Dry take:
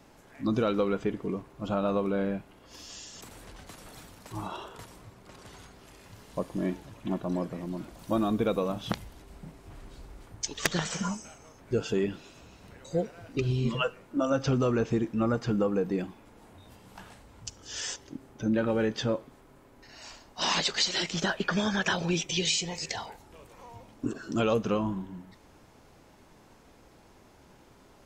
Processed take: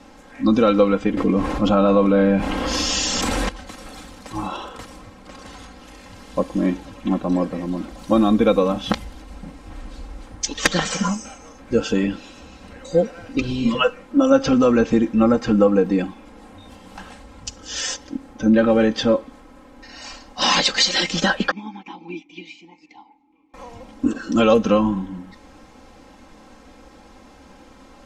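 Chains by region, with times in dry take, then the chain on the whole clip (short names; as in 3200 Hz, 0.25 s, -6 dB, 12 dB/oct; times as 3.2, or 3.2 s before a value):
1.17–3.49 high shelf 7800 Hz -4.5 dB + fast leveller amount 70%
21.51–23.54 vowel filter u + upward expander, over -54 dBFS
whole clip: Bessel low-pass 7500 Hz, order 2; comb 3.8 ms, depth 76%; gain +8.5 dB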